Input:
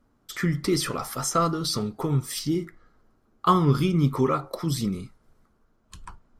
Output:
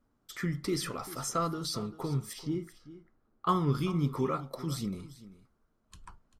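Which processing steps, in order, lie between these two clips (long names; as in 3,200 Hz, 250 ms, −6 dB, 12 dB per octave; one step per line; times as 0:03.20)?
0:02.33–0:03.49: low-pass filter 2,500 Hz 6 dB per octave
on a send: single-tap delay 392 ms −16.5 dB
on the sum: level −8 dB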